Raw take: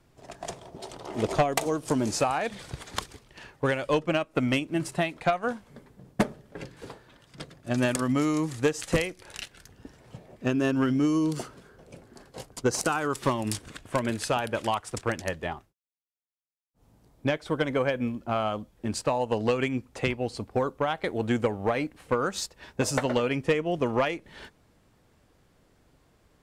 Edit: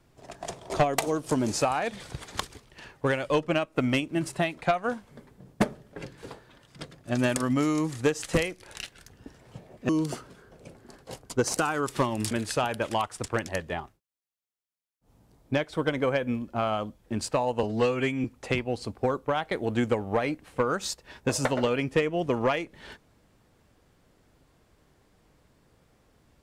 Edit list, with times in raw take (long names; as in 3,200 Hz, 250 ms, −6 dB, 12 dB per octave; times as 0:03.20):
0:00.70–0:01.29: remove
0:10.48–0:11.16: remove
0:13.58–0:14.04: remove
0:19.36–0:19.77: time-stretch 1.5×